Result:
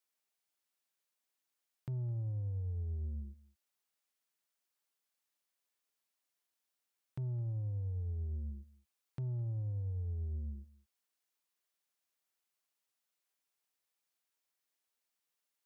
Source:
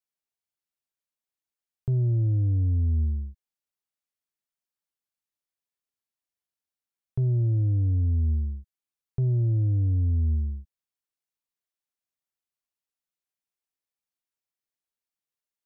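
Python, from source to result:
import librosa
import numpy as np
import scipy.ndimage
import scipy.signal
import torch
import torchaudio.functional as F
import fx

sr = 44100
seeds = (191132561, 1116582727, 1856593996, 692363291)

y = fx.highpass(x, sr, hz=370.0, slope=6)
y = 10.0 ** (-39.5 / 20.0) * np.tanh(y / 10.0 ** (-39.5 / 20.0))
y = y + 10.0 ** (-21.0 / 20.0) * np.pad(y, (int(211 * sr / 1000.0), 0))[:len(y)]
y = y * librosa.db_to_amplitude(5.0)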